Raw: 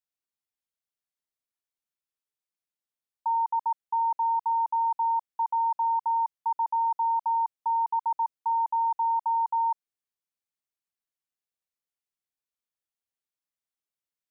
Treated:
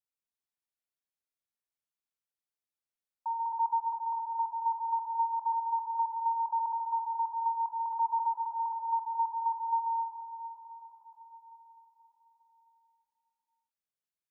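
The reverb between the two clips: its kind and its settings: plate-style reverb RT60 4.8 s, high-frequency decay 0.45×, DRR 1 dB; trim -7 dB

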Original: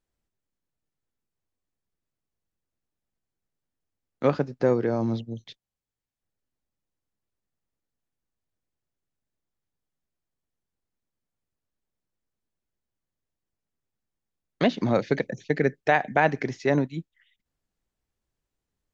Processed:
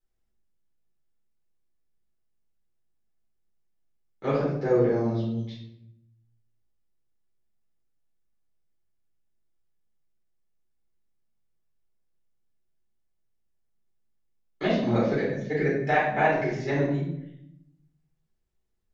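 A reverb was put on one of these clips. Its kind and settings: simulated room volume 190 m³, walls mixed, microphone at 4.1 m; trim -13.5 dB

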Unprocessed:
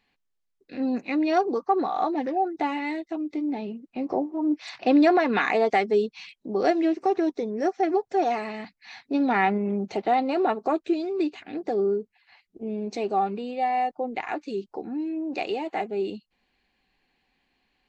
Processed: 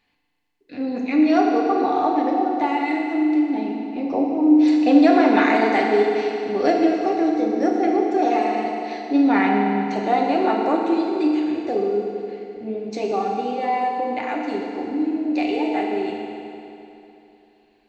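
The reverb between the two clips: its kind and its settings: FDN reverb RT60 3 s, high-frequency decay 0.9×, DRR -1.5 dB; trim +1 dB

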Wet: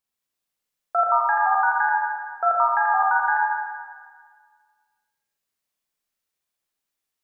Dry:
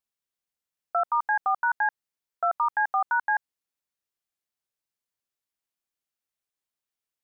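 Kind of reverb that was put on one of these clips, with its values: Schroeder reverb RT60 1.7 s, combs from 29 ms, DRR -2.5 dB; trim +2 dB

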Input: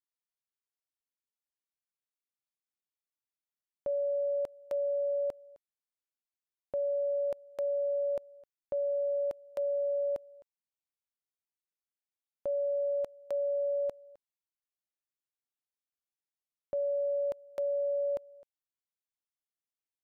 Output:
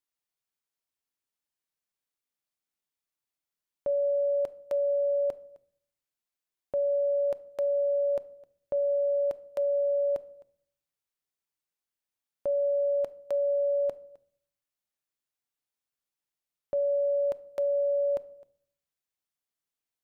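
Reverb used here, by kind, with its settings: simulated room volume 910 m³, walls furnished, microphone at 0.37 m; trim +3.5 dB

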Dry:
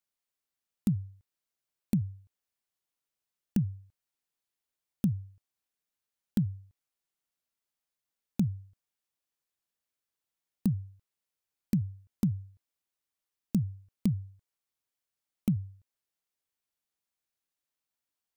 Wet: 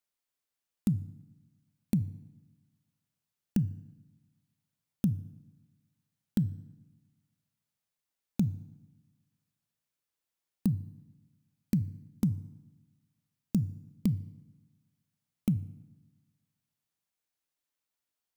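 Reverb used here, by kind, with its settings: FDN reverb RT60 1.1 s, low-frequency decay 1.25×, high-frequency decay 0.8×, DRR 16.5 dB

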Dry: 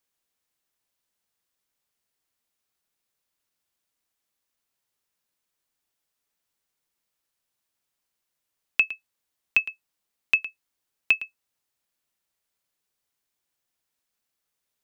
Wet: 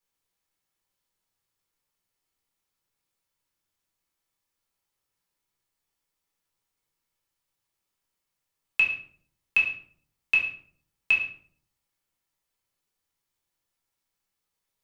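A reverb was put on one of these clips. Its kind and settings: simulated room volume 600 m³, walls furnished, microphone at 4.2 m; trim -6.5 dB

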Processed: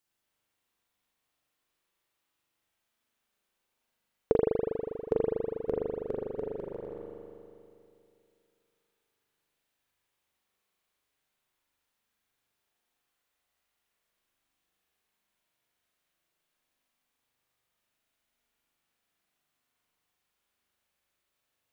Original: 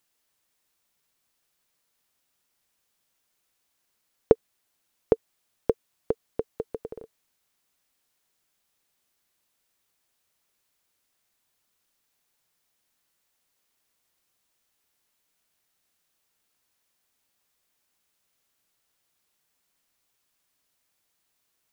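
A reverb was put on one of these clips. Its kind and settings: spring tank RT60 2.7 s, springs 40 ms, chirp 25 ms, DRR -5.5 dB; trim -8.5 dB

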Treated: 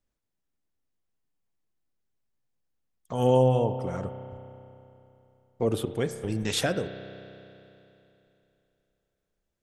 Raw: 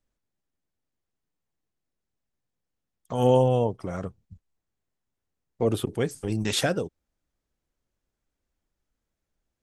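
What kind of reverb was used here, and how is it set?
spring tank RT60 3 s, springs 31 ms, chirp 70 ms, DRR 10 dB; trim -2 dB

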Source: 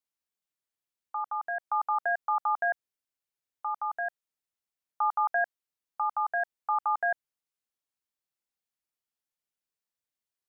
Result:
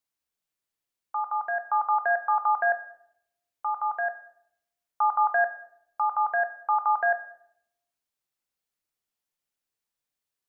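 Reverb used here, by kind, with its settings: simulated room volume 180 m³, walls mixed, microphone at 0.34 m; trim +3 dB

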